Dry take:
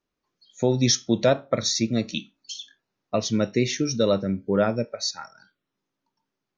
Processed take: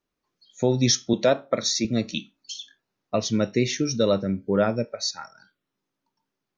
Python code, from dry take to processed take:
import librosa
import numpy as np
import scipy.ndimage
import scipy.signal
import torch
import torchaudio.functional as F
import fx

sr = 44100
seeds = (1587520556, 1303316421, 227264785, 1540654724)

y = fx.highpass(x, sr, hz=190.0, slope=12, at=(1.13, 1.85))